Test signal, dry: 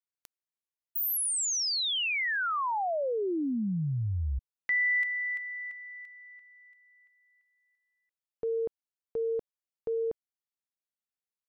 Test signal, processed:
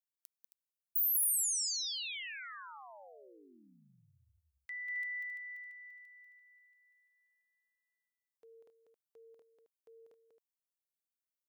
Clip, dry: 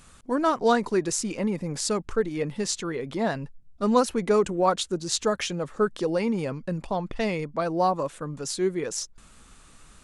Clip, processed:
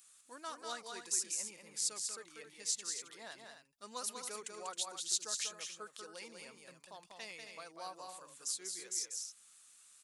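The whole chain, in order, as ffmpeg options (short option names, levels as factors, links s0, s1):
-af "aderivative,aecho=1:1:192.4|268.2:0.562|0.316,volume=0.562"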